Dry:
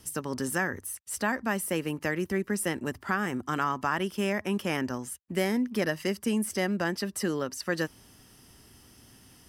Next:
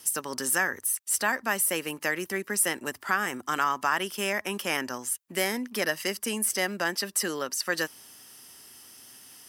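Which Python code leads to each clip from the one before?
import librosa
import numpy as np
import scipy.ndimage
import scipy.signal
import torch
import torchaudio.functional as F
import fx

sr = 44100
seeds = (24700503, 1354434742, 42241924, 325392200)

y = fx.highpass(x, sr, hz=780.0, slope=6)
y = fx.high_shelf(y, sr, hz=6600.0, db=7.0)
y = y * librosa.db_to_amplitude(4.5)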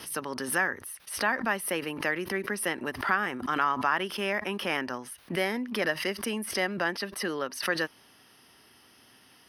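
y = np.convolve(x, np.full(6, 1.0 / 6))[:len(x)]
y = fx.pre_swell(y, sr, db_per_s=100.0)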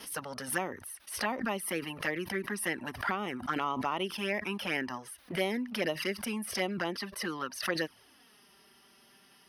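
y = fx.env_flanger(x, sr, rest_ms=5.5, full_db=-23.5)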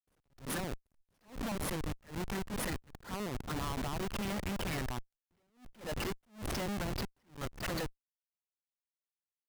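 y = fx.schmitt(x, sr, flips_db=-34.5)
y = fx.attack_slew(y, sr, db_per_s=190.0)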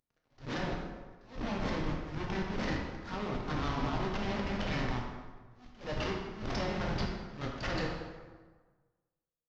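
y = fx.cvsd(x, sr, bps=32000)
y = fx.rev_plate(y, sr, seeds[0], rt60_s=1.4, hf_ratio=0.65, predelay_ms=0, drr_db=-1.5)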